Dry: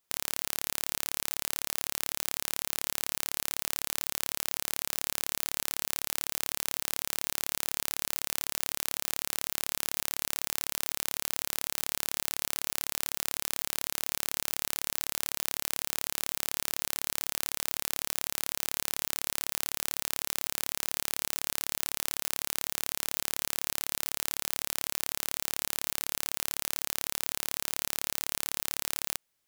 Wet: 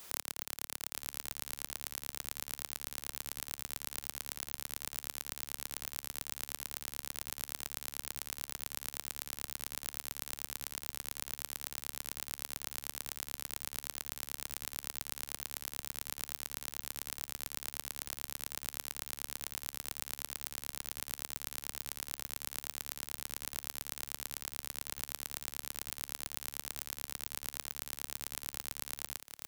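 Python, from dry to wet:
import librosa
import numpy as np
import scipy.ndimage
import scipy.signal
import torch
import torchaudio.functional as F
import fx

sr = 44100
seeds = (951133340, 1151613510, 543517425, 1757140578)

y = fx.auto_swell(x, sr, attack_ms=120.0)
y = fx.leveller(y, sr, passes=1)
y = y + 10.0 ** (-12.5 / 20.0) * np.pad(y, (int(849 * sr / 1000.0), 0))[:len(y)]
y = fx.band_squash(y, sr, depth_pct=100)
y = F.gain(torch.from_numpy(y), -2.5).numpy()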